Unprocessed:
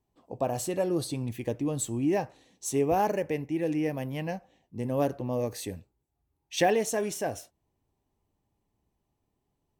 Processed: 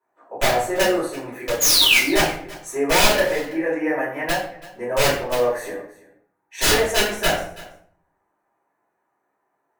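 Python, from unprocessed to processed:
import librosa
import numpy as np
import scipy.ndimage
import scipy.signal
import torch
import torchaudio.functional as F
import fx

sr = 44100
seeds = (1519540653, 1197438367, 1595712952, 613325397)

p1 = scipy.signal.sosfilt(scipy.signal.butter(2, 680.0, 'highpass', fs=sr, output='sos'), x)
p2 = fx.high_shelf_res(p1, sr, hz=2300.0, db=-12.0, q=3.0)
p3 = fx.notch(p2, sr, hz=5000.0, q=5.4)
p4 = fx.rider(p3, sr, range_db=4, speed_s=2.0)
p5 = p3 + (p4 * librosa.db_to_amplitude(-1.0))
p6 = fx.spec_paint(p5, sr, seeds[0], shape='fall', start_s=1.6, length_s=0.39, low_hz=2000.0, high_hz=7000.0, level_db=-22.0)
p7 = (np.mod(10.0 ** (18.0 / 20.0) * p6 + 1.0, 2.0) - 1.0) / 10.0 ** (18.0 / 20.0)
p8 = p7 + fx.echo_single(p7, sr, ms=331, db=-19.5, dry=0)
p9 = fx.room_shoebox(p8, sr, seeds[1], volume_m3=64.0, walls='mixed', distance_m=3.0)
y = p9 * librosa.db_to_amplitude(-4.5)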